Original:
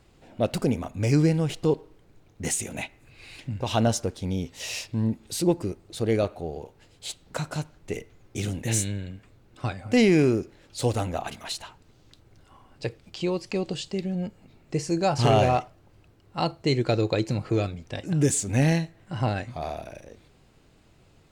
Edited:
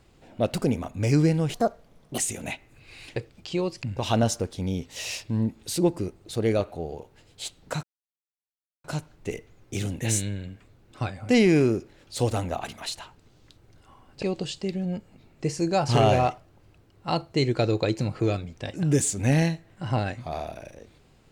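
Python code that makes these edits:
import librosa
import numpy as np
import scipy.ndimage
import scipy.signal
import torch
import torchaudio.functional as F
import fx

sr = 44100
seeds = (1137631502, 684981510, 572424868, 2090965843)

y = fx.edit(x, sr, fx.speed_span(start_s=1.54, length_s=0.95, speed=1.48),
    fx.insert_silence(at_s=7.47, length_s=1.01),
    fx.move(start_s=12.85, length_s=0.67, to_s=3.47), tone=tone)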